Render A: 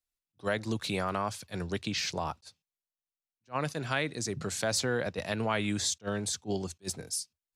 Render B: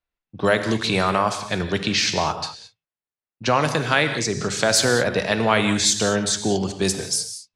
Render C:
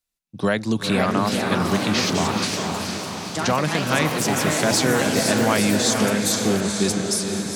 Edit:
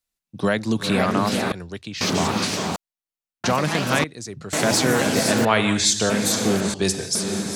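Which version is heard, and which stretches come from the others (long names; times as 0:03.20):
C
0:01.52–0:02.01: punch in from A
0:02.76–0:03.44: punch in from A
0:04.04–0:04.53: punch in from A
0:05.45–0:06.10: punch in from B
0:06.74–0:07.15: punch in from B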